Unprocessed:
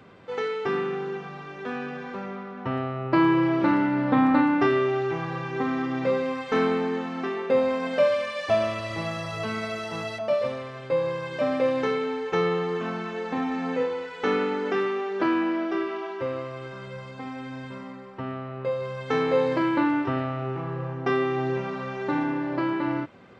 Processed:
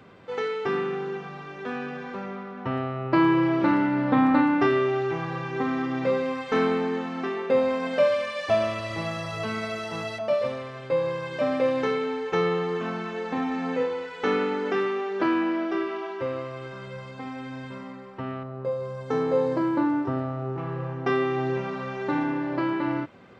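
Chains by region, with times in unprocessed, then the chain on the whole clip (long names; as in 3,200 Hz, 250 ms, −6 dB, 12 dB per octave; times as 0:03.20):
0:18.43–0:20.58: high-pass filter 47 Hz + parametric band 2,600 Hz −12.5 dB 1.5 octaves
whole clip: no processing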